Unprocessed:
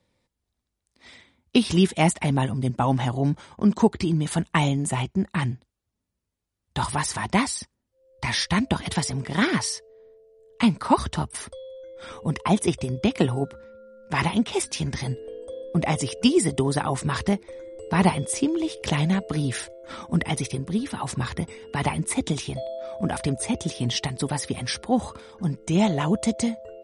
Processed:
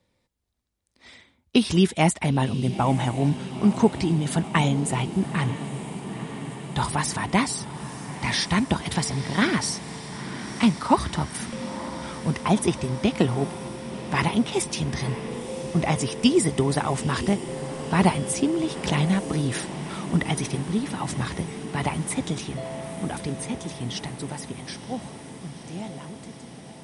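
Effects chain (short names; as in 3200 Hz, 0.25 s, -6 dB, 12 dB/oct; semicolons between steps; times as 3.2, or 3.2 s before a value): ending faded out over 6.12 s; diffused feedback echo 0.948 s, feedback 76%, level -13 dB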